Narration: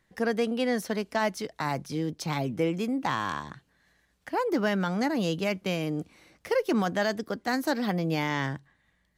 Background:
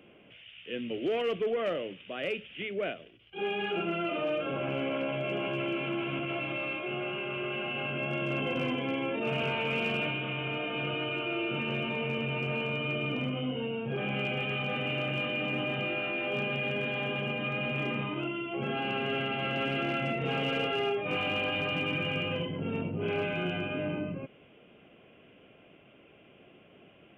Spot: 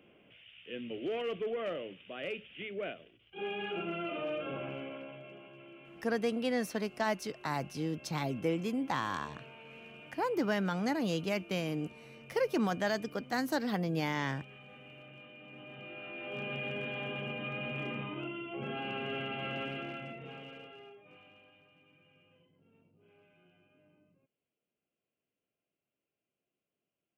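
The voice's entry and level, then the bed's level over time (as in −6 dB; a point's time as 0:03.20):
5.85 s, −5.0 dB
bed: 0:04.54 −5.5 dB
0:05.49 −21 dB
0:15.41 −21 dB
0:16.53 −6 dB
0:19.54 −6 dB
0:21.74 −34.5 dB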